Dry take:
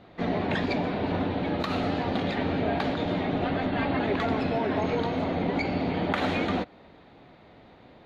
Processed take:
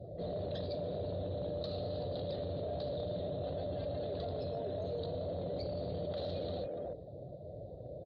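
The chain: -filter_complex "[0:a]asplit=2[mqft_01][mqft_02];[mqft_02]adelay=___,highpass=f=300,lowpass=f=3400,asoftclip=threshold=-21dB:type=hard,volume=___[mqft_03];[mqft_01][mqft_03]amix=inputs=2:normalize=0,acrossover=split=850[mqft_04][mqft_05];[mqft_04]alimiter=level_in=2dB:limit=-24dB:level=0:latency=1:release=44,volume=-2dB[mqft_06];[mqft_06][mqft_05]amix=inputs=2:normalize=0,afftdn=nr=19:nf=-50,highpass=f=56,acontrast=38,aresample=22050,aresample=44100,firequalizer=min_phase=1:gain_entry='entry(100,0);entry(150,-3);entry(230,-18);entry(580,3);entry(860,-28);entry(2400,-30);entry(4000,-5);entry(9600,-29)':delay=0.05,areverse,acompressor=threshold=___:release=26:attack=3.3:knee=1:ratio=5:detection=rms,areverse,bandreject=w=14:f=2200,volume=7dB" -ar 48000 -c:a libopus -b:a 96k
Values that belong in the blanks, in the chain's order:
290, -15dB, -45dB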